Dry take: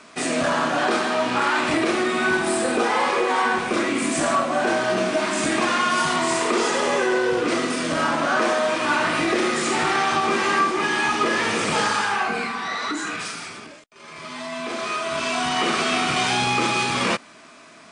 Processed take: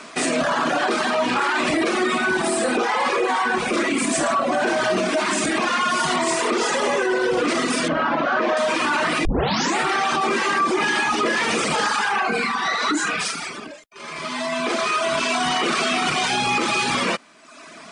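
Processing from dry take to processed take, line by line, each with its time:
7.88–8.57 s: distance through air 220 m
9.25 s: tape start 0.53 s
whole clip: reverb removal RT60 0.83 s; peaking EQ 100 Hz -12 dB 0.56 oct; peak limiter -20.5 dBFS; trim +8 dB

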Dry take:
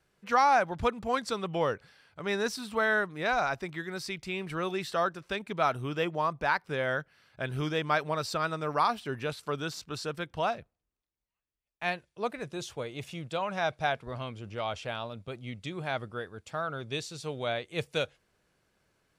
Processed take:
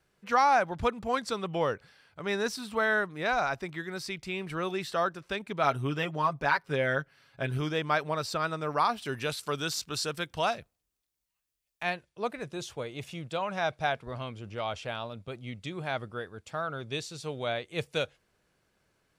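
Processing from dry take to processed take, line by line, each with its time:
5.63–7.58 s: comb 7.3 ms
9.02–11.83 s: treble shelf 2.9 kHz +10.5 dB

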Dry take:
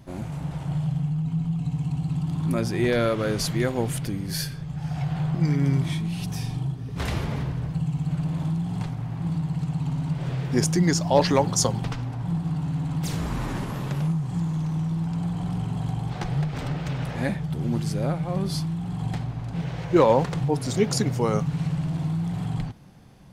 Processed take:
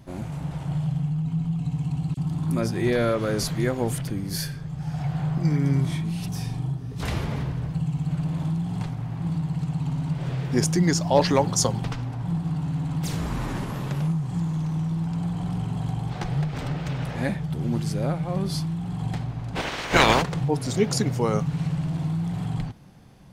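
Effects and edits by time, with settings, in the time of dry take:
2.14–7.04 s: bands offset in time highs, lows 30 ms, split 3 kHz
19.55–20.21 s: spectral peaks clipped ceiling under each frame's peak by 29 dB

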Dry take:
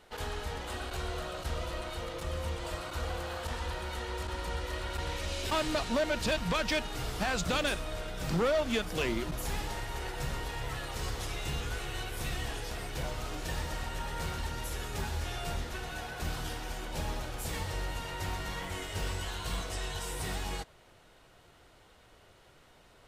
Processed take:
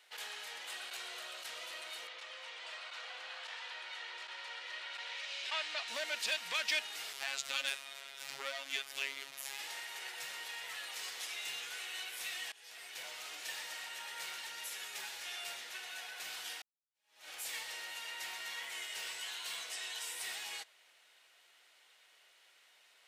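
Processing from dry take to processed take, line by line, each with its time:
2.07–5.88 s: band-pass 500–4400 Hz
7.13–9.59 s: robot voice 137 Hz
12.52–13.30 s: fade in equal-power, from -22.5 dB
16.62–17.29 s: fade in exponential
whole clip: high-pass 790 Hz 12 dB/octave; resonant high shelf 1.6 kHz +6.5 dB, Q 1.5; trim -7.5 dB

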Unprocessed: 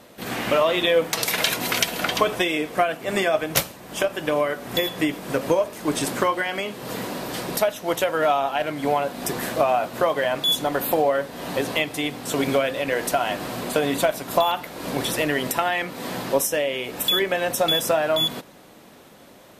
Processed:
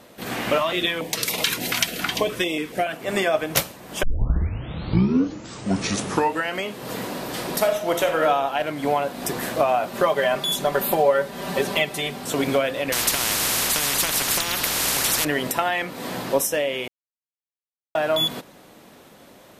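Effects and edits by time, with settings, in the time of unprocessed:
0.58–2.93 s: step-sequenced notch 7 Hz 460–1600 Hz
4.03 s: tape start 2.63 s
7.32–8.20 s: reverb throw, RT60 0.89 s, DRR 4.5 dB
9.87–12.25 s: comb 5.1 ms, depth 72%
12.92–15.25 s: spectrum-flattening compressor 10:1
16.88–17.95 s: mute

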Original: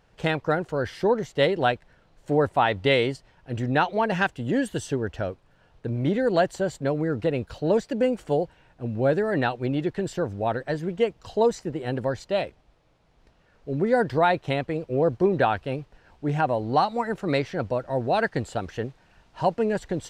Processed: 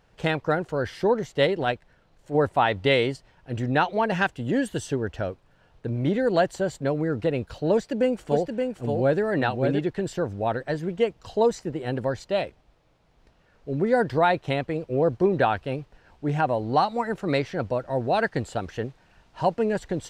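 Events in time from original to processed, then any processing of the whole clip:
1.46–2.35 s: transient shaper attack -10 dB, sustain -2 dB
7.74–9.79 s: delay 573 ms -4.5 dB

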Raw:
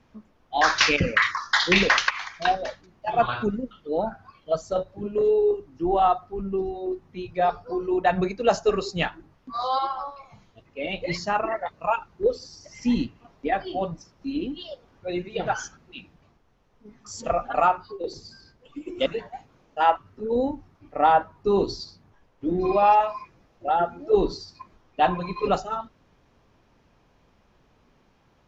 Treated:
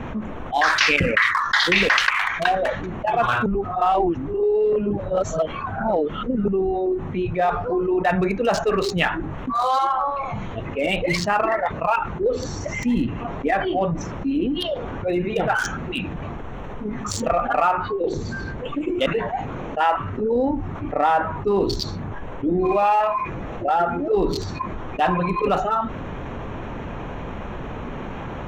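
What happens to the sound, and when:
3.46–6.48 s: reverse
18.06–18.83 s: loudspeaker Doppler distortion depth 0.28 ms
whole clip: local Wiener filter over 9 samples; dynamic bell 2 kHz, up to +6 dB, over -36 dBFS, Q 0.75; level flattener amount 70%; trim -5 dB

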